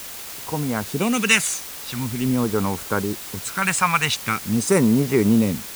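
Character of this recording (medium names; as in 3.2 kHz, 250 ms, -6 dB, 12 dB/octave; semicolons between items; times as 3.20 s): phasing stages 2, 0.45 Hz, lowest notch 320–3700 Hz; a quantiser's noise floor 6-bit, dither triangular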